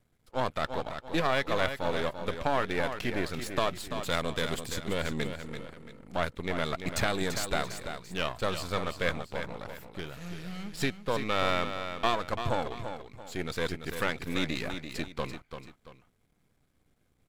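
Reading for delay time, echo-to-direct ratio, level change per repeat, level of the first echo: 339 ms, −8.0 dB, −9.0 dB, −8.5 dB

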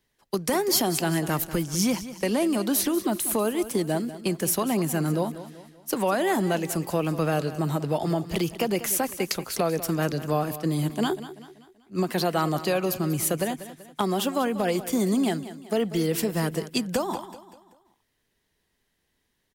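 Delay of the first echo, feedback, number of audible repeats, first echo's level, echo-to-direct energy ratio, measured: 192 ms, 44%, 3, −14.0 dB, −13.0 dB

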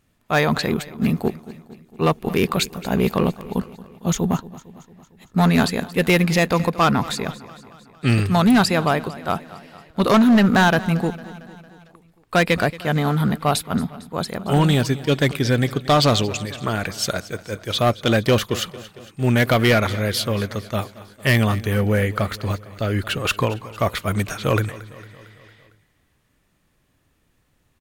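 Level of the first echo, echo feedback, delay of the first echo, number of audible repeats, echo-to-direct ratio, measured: −18.0 dB, 59%, 227 ms, 4, −16.0 dB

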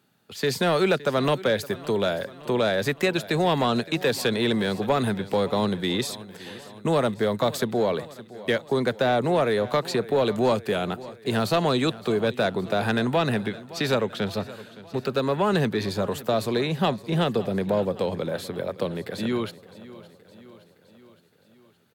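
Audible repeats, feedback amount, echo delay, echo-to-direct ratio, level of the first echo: 4, 59%, 566 ms, −16.0 dB, −18.0 dB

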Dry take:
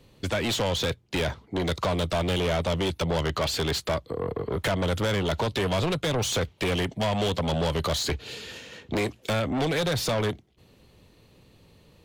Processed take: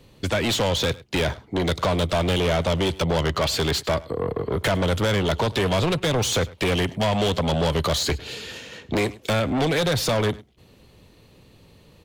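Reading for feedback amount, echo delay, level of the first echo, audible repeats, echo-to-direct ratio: repeats not evenly spaced, 103 ms, −21.0 dB, 1, −21.0 dB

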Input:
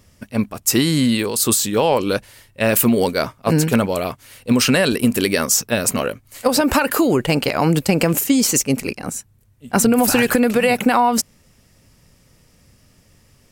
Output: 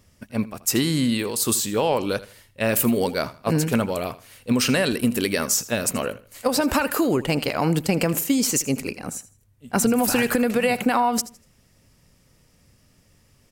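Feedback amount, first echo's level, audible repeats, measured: 27%, −17.0 dB, 2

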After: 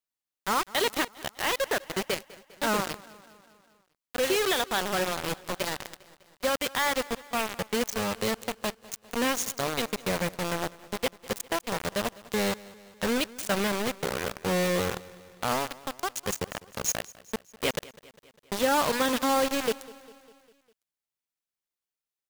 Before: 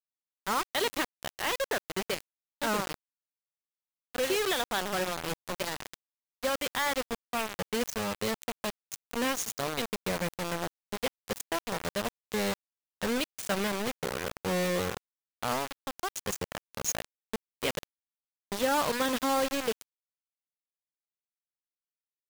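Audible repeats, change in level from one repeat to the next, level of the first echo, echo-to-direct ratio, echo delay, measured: 4, −4.5 dB, −20.5 dB, −18.5 dB, 201 ms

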